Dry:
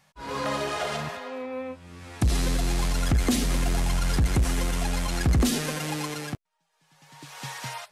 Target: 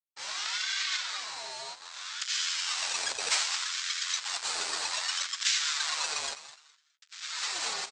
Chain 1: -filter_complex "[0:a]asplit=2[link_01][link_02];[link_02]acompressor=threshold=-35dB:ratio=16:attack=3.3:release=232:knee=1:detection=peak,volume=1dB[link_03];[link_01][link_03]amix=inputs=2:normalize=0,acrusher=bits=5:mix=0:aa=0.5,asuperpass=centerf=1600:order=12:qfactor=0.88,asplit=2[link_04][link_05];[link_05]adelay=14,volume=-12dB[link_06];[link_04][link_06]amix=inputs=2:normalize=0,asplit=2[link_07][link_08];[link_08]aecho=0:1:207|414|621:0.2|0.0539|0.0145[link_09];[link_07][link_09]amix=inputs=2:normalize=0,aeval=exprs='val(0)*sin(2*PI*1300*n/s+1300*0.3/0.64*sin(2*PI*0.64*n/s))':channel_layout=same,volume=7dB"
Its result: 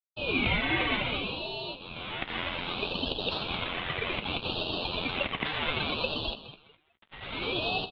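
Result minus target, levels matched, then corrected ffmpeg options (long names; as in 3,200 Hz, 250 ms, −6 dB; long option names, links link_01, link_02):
2,000 Hz band +3.0 dB
-filter_complex "[0:a]asplit=2[link_01][link_02];[link_02]acompressor=threshold=-35dB:ratio=16:attack=3.3:release=232:knee=1:detection=peak,volume=1dB[link_03];[link_01][link_03]amix=inputs=2:normalize=0,acrusher=bits=5:mix=0:aa=0.5,asuperpass=centerf=4000:order=12:qfactor=0.88,asplit=2[link_04][link_05];[link_05]adelay=14,volume=-12dB[link_06];[link_04][link_06]amix=inputs=2:normalize=0,asplit=2[link_07][link_08];[link_08]aecho=0:1:207|414|621:0.2|0.0539|0.0145[link_09];[link_07][link_09]amix=inputs=2:normalize=0,aeval=exprs='val(0)*sin(2*PI*1300*n/s+1300*0.3/0.64*sin(2*PI*0.64*n/s))':channel_layout=same,volume=7dB"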